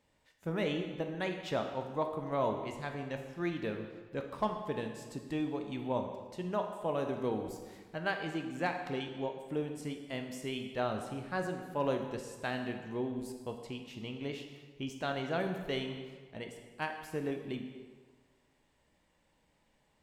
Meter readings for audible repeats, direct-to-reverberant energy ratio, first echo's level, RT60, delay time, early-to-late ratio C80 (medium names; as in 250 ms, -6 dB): no echo, 4.0 dB, no echo, 1.5 s, no echo, 8.0 dB